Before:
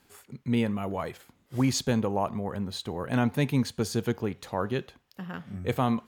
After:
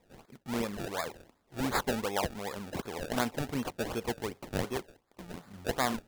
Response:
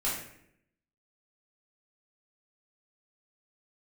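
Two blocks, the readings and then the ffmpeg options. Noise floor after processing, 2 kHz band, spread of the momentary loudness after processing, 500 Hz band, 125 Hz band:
-72 dBFS, 0.0 dB, 15 LU, -4.0 dB, -11.0 dB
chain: -af "equalizer=f=120:t=o:w=2.5:g=-14.5,acrusher=samples=29:mix=1:aa=0.000001:lfo=1:lforange=29:lforate=2.7"

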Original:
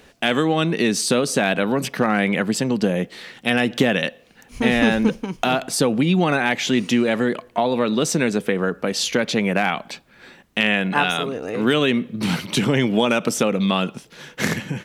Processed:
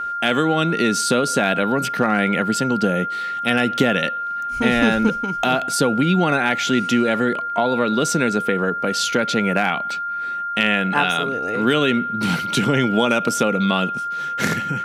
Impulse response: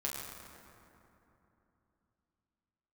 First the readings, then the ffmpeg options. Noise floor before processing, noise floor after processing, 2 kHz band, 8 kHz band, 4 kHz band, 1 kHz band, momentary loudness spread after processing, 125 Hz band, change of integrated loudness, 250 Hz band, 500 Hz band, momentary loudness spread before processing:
-51 dBFS, -26 dBFS, +1.5 dB, 0.0 dB, 0.0 dB, +5.5 dB, 5 LU, 0.0 dB, +1.0 dB, 0.0 dB, 0.0 dB, 6 LU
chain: -af "aeval=exprs='val(0)+0.0708*sin(2*PI*1400*n/s)':c=same"

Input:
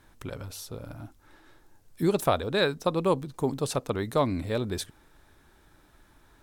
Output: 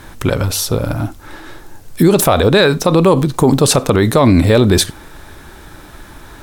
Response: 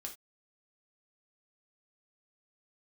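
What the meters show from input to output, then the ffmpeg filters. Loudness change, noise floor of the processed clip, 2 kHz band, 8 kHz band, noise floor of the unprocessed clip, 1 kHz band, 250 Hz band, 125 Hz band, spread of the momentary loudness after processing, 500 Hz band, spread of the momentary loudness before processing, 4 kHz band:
+16.0 dB, -38 dBFS, +15.5 dB, +21.5 dB, -61 dBFS, +13.0 dB, +18.0 dB, +19.0 dB, 9 LU, +15.0 dB, 15 LU, +16.5 dB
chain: -filter_complex "[0:a]acontrast=74,asplit=2[a][b];[1:a]atrim=start_sample=2205,asetrate=40572,aresample=44100[c];[b][c]afir=irnorm=-1:irlink=0,volume=-11dB[d];[a][d]amix=inputs=2:normalize=0,alimiter=level_in=15.5dB:limit=-1dB:release=50:level=0:latency=1,volume=-1dB"

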